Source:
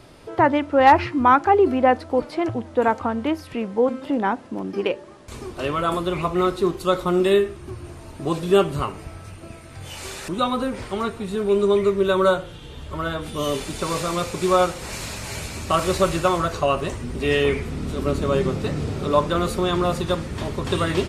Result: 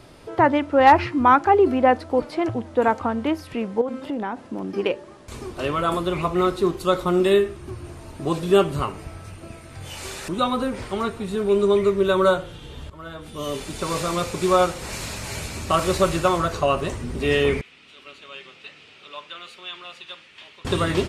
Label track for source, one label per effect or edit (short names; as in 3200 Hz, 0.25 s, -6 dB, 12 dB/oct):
3.810000	4.740000	compressor 4:1, threshold -24 dBFS
12.900000	14.030000	fade in, from -15.5 dB
17.610000	20.650000	band-pass 2800 Hz, Q 3.1